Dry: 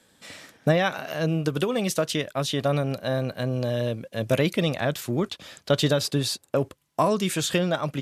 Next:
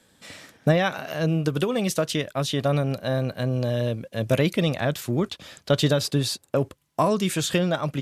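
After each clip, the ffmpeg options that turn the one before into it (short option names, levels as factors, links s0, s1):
-af "lowshelf=f=160:g=4.5"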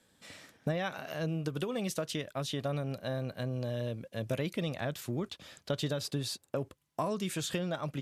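-af "acompressor=threshold=0.0631:ratio=2,volume=0.398"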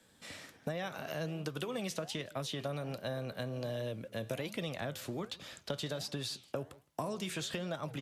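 -filter_complex "[0:a]flanger=delay=5.9:depth=8.8:regen=-83:speed=1.3:shape=sinusoidal,asplit=2[s0][s1];[s1]adelay=163.3,volume=0.0447,highshelf=f=4000:g=-3.67[s2];[s0][s2]amix=inputs=2:normalize=0,acrossover=split=130|500|5800[s3][s4][s5][s6];[s3]acompressor=threshold=0.00126:ratio=4[s7];[s4]acompressor=threshold=0.00355:ratio=4[s8];[s5]acompressor=threshold=0.00501:ratio=4[s9];[s6]acompressor=threshold=0.00141:ratio=4[s10];[s7][s8][s9][s10]amix=inputs=4:normalize=0,volume=2.24"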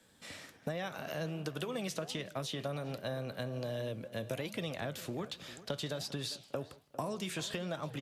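-filter_complex "[0:a]asplit=2[s0][s1];[s1]adelay=401,lowpass=f=2300:p=1,volume=0.158,asplit=2[s2][s3];[s3]adelay=401,lowpass=f=2300:p=1,volume=0.28,asplit=2[s4][s5];[s5]adelay=401,lowpass=f=2300:p=1,volume=0.28[s6];[s0][s2][s4][s6]amix=inputs=4:normalize=0"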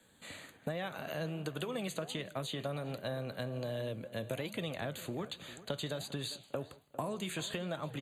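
-af "asuperstop=centerf=5400:order=12:qfactor=3.5"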